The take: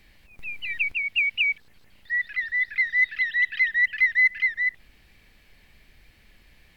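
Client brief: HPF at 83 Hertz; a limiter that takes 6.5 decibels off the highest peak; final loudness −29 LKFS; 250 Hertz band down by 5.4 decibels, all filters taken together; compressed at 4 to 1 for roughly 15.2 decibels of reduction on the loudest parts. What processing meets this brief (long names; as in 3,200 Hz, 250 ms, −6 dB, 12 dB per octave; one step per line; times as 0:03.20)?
high-pass filter 83 Hz
parametric band 250 Hz −7.5 dB
downward compressor 4 to 1, threshold −36 dBFS
level +9 dB
brickwall limiter −24 dBFS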